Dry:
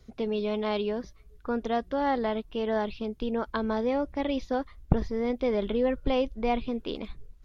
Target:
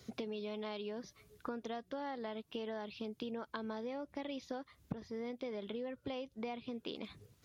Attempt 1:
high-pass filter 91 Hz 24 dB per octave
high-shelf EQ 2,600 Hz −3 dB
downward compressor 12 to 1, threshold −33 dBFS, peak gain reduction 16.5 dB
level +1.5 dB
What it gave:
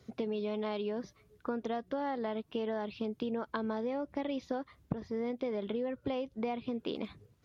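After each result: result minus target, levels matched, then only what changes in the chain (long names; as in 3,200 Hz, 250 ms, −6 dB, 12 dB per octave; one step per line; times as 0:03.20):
downward compressor: peak gain reduction −7 dB; 4,000 Hz band −5.5 dB
change: downward compressor 12 to 1, threshold −40.5 dBFS, peak gain reduction 23.5 dB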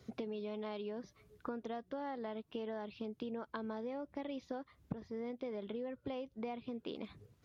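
4,000 Hz band −5.5 dB
change: high-shelf EQ 2,600 Hz +7 dB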